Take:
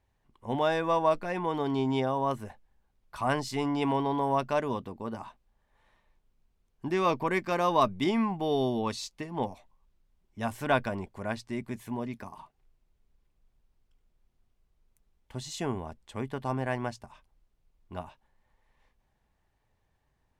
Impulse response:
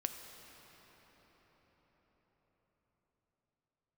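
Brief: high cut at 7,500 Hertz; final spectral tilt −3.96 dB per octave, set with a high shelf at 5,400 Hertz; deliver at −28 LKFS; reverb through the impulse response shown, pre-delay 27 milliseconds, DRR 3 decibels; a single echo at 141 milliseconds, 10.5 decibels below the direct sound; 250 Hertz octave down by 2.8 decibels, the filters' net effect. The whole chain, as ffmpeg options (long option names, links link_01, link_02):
-filter_complex "[0:a]lowpass=7500,equalizer=frequency=250:width_type=o:gain=-3.5,highshelf=frequency=5400:gain=8,aecho=1:1:141:0.299,asplit=2[link_01][link_02];[1:a]atrim=start_sample=2205,adelay=27[link_03];[link_02][link_03]afir=irnorm=-1:irlink=0,volume=-3.5dB[link_04];[link_01][link_04]amix=inputs=2:normalize=0,volume=1dB"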